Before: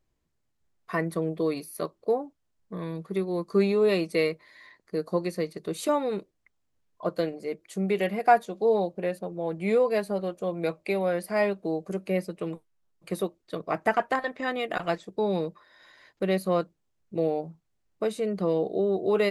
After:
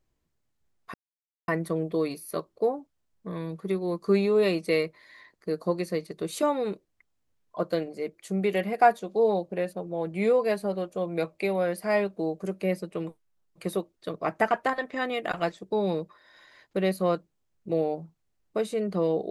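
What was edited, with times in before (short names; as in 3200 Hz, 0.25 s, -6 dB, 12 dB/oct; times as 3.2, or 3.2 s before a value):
0.94 insert silence 0.54 s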